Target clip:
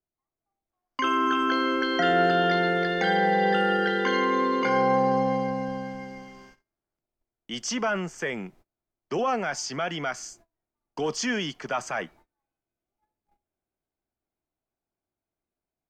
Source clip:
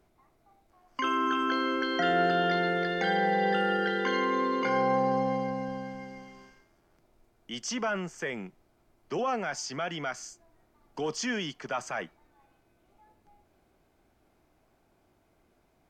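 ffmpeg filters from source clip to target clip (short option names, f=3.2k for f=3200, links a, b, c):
-af "agate=range=-27dB:threshold=-56dB:ratio=16:detection=peak,dynaudnorm=f=230:g=3:m=4dB"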